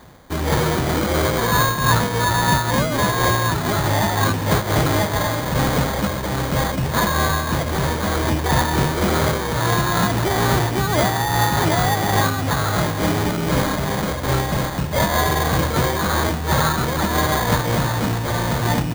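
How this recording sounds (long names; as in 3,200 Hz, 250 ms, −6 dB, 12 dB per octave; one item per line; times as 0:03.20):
aliases and images of a low sample rate 2,700 Hz, jitter 0%
amplitude modulation by smooth noise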